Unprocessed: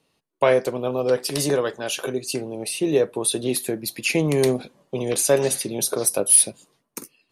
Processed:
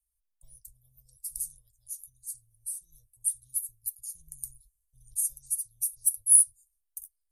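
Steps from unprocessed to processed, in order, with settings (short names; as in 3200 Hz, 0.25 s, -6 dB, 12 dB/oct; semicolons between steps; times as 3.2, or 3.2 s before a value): inverse Chebyshev band-stop 200–2700 Hz, stop band 70 dB; high shelf 3900 Hz -9 dB; gain +7 dB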